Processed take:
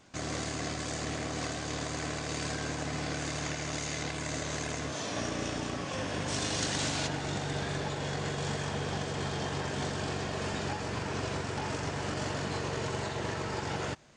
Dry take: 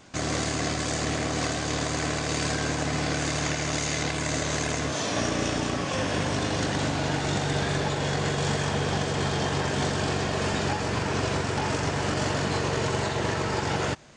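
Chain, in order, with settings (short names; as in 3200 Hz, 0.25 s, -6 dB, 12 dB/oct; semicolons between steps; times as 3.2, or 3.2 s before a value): 6.27–7.06 high shelf 3900 Hz -> 2300 Hz +12 dB; gain -7.5 dB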